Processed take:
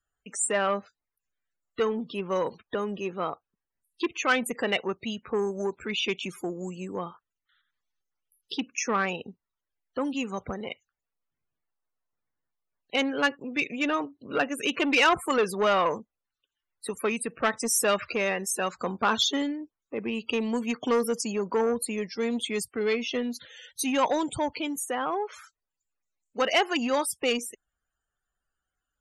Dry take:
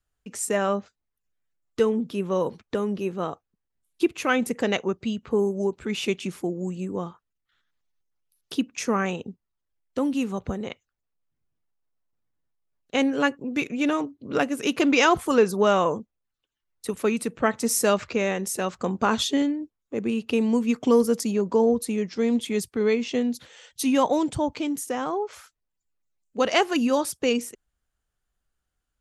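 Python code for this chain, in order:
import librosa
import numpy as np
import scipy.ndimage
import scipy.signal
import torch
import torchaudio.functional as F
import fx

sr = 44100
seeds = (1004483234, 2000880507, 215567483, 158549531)

y = fx.spec_topn(x, sr, count=64)
y = 10.0 ** (-15.5 / 20.0) * np.tanh(y / 10.0 ** (-15.5 / 20.0))
y = fx.low_shelf(y, sr, hz=500.0, db=-12.0)
y = F.gain(torch.from_numpy(y), 4.0).numpy()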